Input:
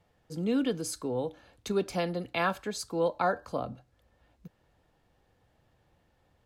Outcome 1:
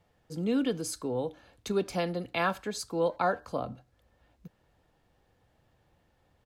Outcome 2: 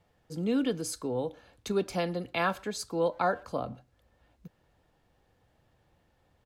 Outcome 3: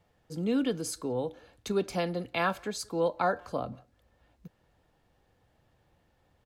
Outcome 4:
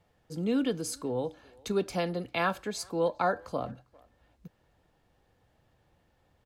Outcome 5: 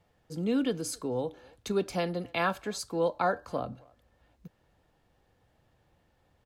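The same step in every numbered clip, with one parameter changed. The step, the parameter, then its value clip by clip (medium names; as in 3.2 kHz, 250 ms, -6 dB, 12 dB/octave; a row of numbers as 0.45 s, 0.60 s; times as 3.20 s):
speakerphone echo, time: 80 ms, 120 ms, 180 ms, 400 ms, 270 ms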